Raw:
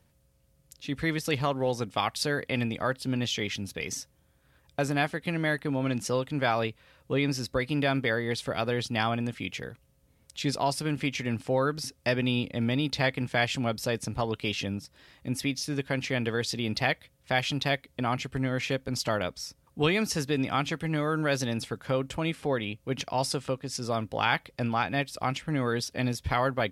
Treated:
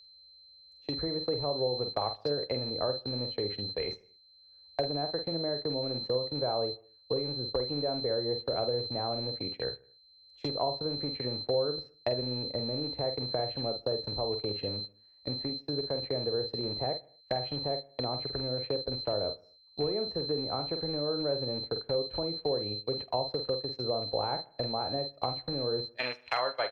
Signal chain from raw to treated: rattle on loud lows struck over -28 dBFS, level -21 dBFS; tilt EQ -4 dB/octave, from 25.95 s +3 dB/octave; compression 5:1, threshold -21 dBFS, peak gain reduction 8 dB; low-pass that closes with the level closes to 740 Hz, closed at -22 dBFS; hard clipper -15 dBFS, distortion -33 dB; whistle 4.1 kHz -33 dBFS; doubling 48 ms -8 dB; gate -29 dBFS, range -28 dB; resonant low shelf 320 Hz -13 dB, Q 1.5; feedback delay 77 ms, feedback 43%, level -22.5 dB; three bands compressed up and down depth 40%; trim -2 dB

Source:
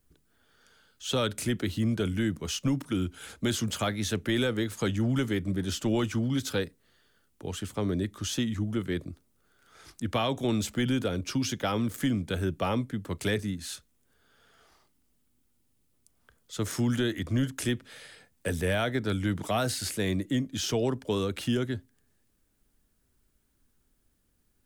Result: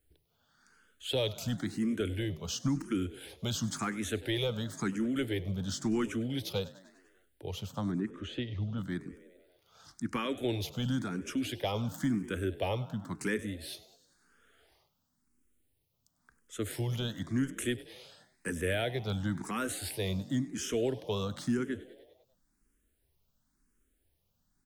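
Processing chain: 7.92–8.78 s: distance through air 220 m; on a send: frequency-shifting echo 99 ms, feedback 63%, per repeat +44 Hz, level -18.5 dB; on the sum: barber-pole phaser +0.96 Hz; trim -1.5 dB

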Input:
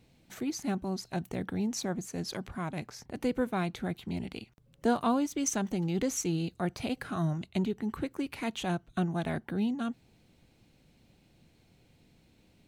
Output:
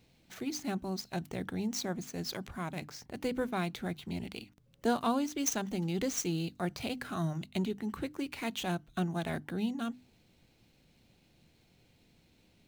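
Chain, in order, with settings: median filter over 5 samples; treble shelf 3.3 kHz +8.5 dB; hum notches 50/100/150/200/250/300 Hz; trim -2.5 dB

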